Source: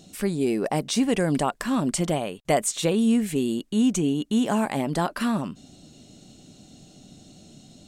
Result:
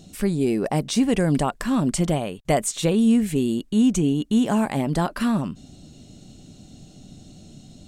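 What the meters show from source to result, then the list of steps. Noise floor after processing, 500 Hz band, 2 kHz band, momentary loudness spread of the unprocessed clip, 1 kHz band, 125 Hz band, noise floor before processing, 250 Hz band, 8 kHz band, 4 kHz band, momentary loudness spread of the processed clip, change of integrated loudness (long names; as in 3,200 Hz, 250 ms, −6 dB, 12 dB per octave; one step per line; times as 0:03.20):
−49 dBFS, +1.0 dB, 0.0 dB, 5 LU, +0.5 dB, +5.0 dB, −53 dBFS, +3.0 dB, 0.0 dB, 0.0 dB, 5 LU, +2.5 dB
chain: low-shelf EQ 140 Hz +11.5 dB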